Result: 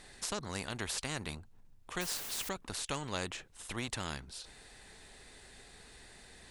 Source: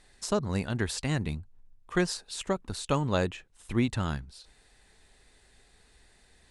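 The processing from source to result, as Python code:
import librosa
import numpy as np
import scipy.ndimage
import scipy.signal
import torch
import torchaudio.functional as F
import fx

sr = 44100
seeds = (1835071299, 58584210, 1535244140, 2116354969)

y = fx.quant_dither(x, sr, seeds[0], bits=8, dither='triangular', at=(2.01, 2.49))
y = fx.spectral_comp(y, sr, ratio=2.0)
y = y * librosa.db_to_amplitude(-6.0)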